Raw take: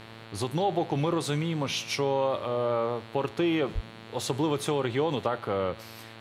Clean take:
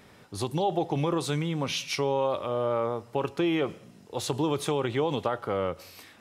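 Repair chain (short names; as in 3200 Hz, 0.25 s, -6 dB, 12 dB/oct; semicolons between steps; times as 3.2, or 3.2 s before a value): de-hum 112.2 Hz, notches 40; 3.74–3.86 HPF 140 Hz 24 dB/oct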